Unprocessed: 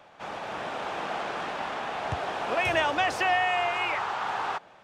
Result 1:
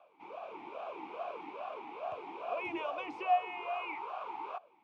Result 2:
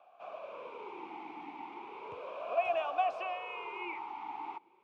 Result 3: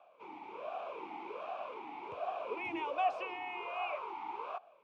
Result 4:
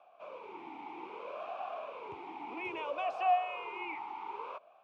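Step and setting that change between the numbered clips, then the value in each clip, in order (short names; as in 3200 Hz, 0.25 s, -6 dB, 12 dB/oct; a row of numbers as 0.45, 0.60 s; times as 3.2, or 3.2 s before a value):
vowel sweep, rate: 2.4, 0.35, 1.3, 0.62 Hz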